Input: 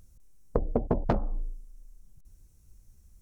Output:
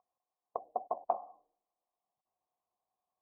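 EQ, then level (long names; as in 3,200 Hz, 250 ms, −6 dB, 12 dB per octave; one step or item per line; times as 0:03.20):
formant resonators in series a
high-pass filter 430 Hz 12 dB per octave
+6.5 dB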